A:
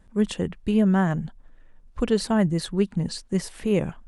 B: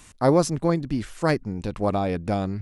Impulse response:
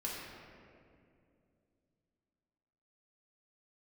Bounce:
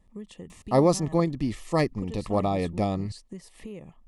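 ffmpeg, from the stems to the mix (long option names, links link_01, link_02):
-filter_complex "[0:a]acompressor=threshold=-32dB:ratio=5,volume=-6.5dB[link_01];[1:a]adelay=500,volume=-1.5dB[link_02];[link_01][link_02]amix=inputs=2:normalize=0,asuperstop=centerf=1500:order=8:qfactor=4.1"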